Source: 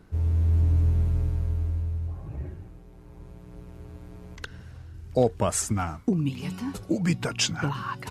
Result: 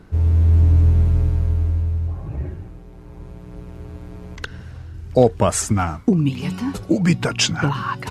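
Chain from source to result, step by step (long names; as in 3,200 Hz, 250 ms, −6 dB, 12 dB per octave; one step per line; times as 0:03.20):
high-shelf EQ 8,000 Hz −6.5 dB
level +8 dB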